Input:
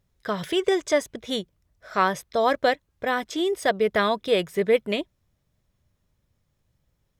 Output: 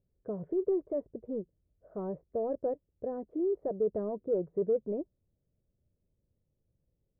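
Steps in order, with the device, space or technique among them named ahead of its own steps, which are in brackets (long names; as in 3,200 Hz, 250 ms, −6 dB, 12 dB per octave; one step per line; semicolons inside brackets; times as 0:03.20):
overdriven synthesiser ladder filter (soft clipping −19 dBFS, distortion −12 dB; transistor ladder low-pass 600 Hz, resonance 35%)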